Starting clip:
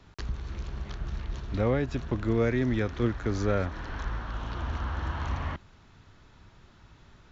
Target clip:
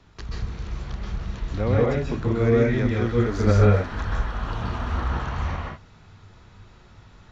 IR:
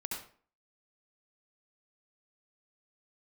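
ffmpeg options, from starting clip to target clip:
-filter_complex "[0:a]asplit=3[s0][s1][s2];[s0]afade=t=out:st=3.05:d=0.02[s3];[s1]aphaser=in_gain=1:out_gain=1:delay=5:decay=0.49:speed=2:type=sinusoidal,afade=t=in:st=3.05:d=0.02,afade=t=out:st=5.05:d=0.02[s4];[s2]afade=t=in:st=5.05:d=0.02[s5];[s3][s4][s5]amix=inputs=3:normalize=0[s6];[1:a]atrim=start_sample=2205,afade=t=out:st=0.16:d=0.01,atrim=end_sample=7497,asetrate=22491,aresample=44100[s7];[s6][s7]afir=irnorm=-1:irlink=0"

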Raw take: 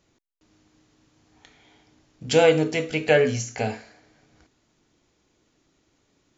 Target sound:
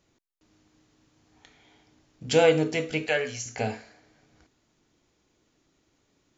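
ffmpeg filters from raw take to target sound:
-filter_complex "[0:a]asettb=1/sr,asplit=3[s0][s1][s2];[s0]atrim=end=3.064[s3];[s1]atrim=start=3.06:end=3.46,asetpts=PTS-STARTPTS,afade=t=in:d=0.004:c=qsin,afade=t=out:st=0.396:d=0.004:c=qsin,equalizer=f=190:w=0.36:g=-13[s4];[s2]atrim=start=3.456[s5];[s3][s4]acrossfade=d=0.004:c1=hsin:c2=qsin[s6];[s6][s5]acrossfade=d=0.004:c1=qsin:c2=hsin,volume=0.75"

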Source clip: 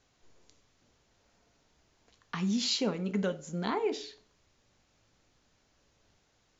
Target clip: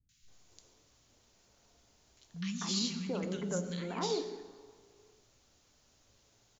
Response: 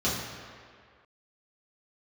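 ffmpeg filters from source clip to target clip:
-filter_complex "[0:a]highshelf=f=5600:g=10.5,alimiter=level_in=1.19:limit=0.0631:level=0:latency=1:release=71,volume=0.841,acrossover=split=200|1800[s0][s1][s2];[s2]adelay=90[s3];[s1]adelay=280[s4];[s0][s4][s3]amix=inputs=3:normalize=0,asplit=2[s5][s6];[1:a]atrim=start_sample=2205,adelay=113[s7];[s6][s7]afir=irnorm=-1:irlink=0,volume=0.0631[s8];[s5][s8]amix=inputs=2:normalize=0"

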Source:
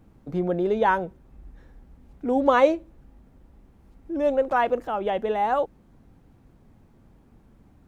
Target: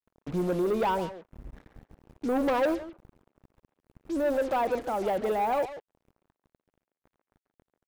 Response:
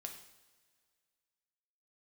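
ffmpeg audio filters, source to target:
-filter_complex "[0:a]acrossover=split=1100[s0][s1];[s1]acompressor=threshold=0.01:ratio=6[s2];[s0][s2]amix=inputs=2:normalize=0,acrusher=bits=6:mix=0:aa=0.5,asoftclip=type=tanh:threshold=0.0794,asplit=2[s3][s4];[s4]adelay=140,highpass=300,lowpass=3400,asoftclip=type=hard:threshold=0.0299,volume=0.398[s5];[s3][s5]amix=inputs=2:normalize=0"

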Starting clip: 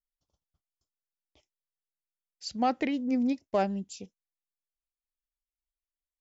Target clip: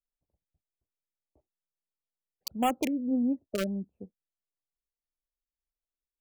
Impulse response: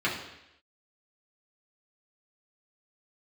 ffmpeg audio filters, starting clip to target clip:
-filter_complex "[0:a]acrossover=split=240|900[s0][s1][s2];[s2]acrusher=bits=4:mix=0:aa=0.000001[s3];[s0][s1][s3]amix=inputs=3:normalize=0,afftfilt=real='re*(1-between(b*sr/1024,820*pow(4900/820,0.5+0.5*sin(2*PI*1.6*pts/sr))/1.41,820*pow(4900/820,0.5+0.5*sin(2*PI*1.6*pts/sr))*1.41))':imag='im*(1-between(b*sr/1024,820*pow(4900/820,0.5+0.5*sin(2*PI*1.6*pts/sr))/1.41,820*pow(4900/820,0.5+0.5*sin(2*PI*1.6*pts/sr))*1.41))':win_size=1024:overlap=0.75"

